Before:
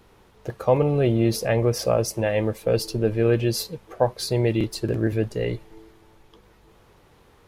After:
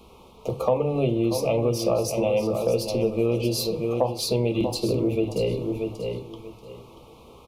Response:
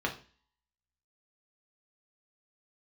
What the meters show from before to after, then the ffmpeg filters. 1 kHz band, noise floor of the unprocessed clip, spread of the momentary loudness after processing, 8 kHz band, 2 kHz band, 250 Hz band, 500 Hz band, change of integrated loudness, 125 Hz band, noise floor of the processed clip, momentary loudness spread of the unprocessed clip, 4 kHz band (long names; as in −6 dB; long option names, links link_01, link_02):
−1.0 dB, −56 dBFS, 11 LU, −1.0 dB, −6.0 dB, −0.5 dB, 0.0 dB, −1.5 dB, −4.0 dB, −50 dBFS, 8 LU, +0.5 dB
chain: -filter_complex "[0:a]asuperstop=centerf=1700:order=8:qfactor=1.6,aecho=1:1:635|1270|1905:0.316|0.0664|0.0139,asplit=2[link_01][link_02];[1:a]atrim=start_sample=2205,asetrate=48510,aresample=44100[link_03];[link_02][link_03]afir=irnorm=-1:irlink=0,volume=-5dB[link_04];[link_01][link_04]amix=inputs=2:normalize=0,acompressor=threshold=-24dB:ratio=3,volume=2dB"